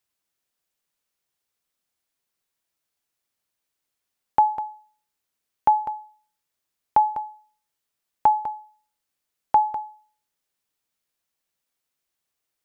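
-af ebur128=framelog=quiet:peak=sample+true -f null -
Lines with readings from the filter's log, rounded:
Integrated loudness:
  I:         -23.8 LUFS
  Threshold: -35.6 LUFS
Loudness range:
  LRA:         4.8 LU
  Threshold: -48.2 LUFS
  LRA low:   -30.8 LUFS
  LRA high:  -26.1 LUFS
Sample peak:
  Peak:       -8.1 dBFS
True peak:
  Peak:       -8.1 dBFS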